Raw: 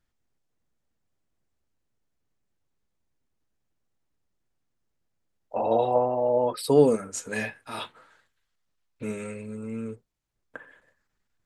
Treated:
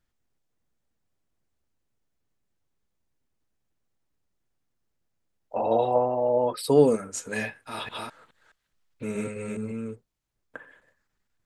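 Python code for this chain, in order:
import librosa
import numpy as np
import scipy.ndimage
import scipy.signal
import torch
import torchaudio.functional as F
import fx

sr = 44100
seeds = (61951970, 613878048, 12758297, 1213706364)

y = fx.reverse_delay(x, sr, ms=210, wet_db=-1.0, at=(7.47, 9.72))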